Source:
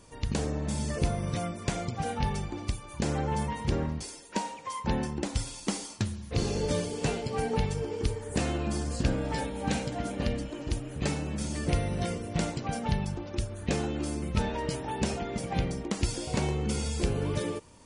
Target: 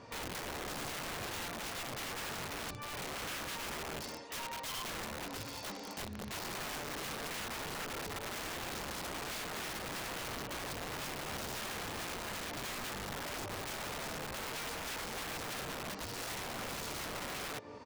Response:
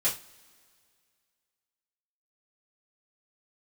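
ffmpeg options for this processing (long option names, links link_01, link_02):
-filter_complex "[0:a]equalizer=frequency=3000:width=2.2:gain=-13.5,asplit=3[link_01][link_02][link_03];[link_02]asetrate=55563,aresample=44100,atempo=0.793701,volume=-15dB[link_04];[link_03]asetrate=88200,aresample=44100,atempo=0.5,volume=-14dB[link_05];[link_01][link_04][link_05]amix=inputs=3:normalize=0,highpass=140,equalizer=frequency=170:width_type=q:width=4:gain=-10,equalizer=frequency=340:width_type=q:width=4:gain=-8,equalizer=frequency=2800:width_type=q:width=4:gain=6,lowpass=frequency=4500:width=0.5412,lowpass=frequency=4500:width=1.3066,aecho=1:1:190:0.0891,acompressor=threshold=-41dB:ratio=20,aeval=exprs='(mod(141*val(0)+1,2)-1)/141':channel_layout=same,volume=7dB"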